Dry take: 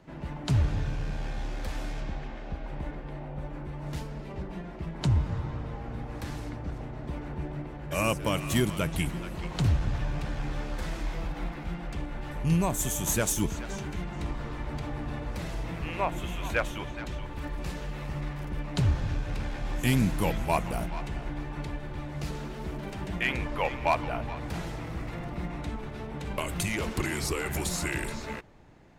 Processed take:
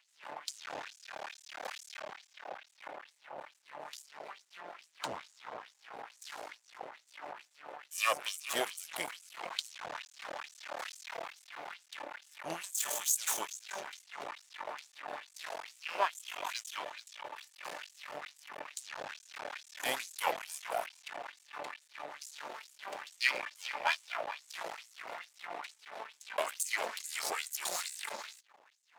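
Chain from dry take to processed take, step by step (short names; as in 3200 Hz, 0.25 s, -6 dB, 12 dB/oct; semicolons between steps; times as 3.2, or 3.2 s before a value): half-wave rectifier; LFO high-pass sine 2.3 Hz 600–7800 Hz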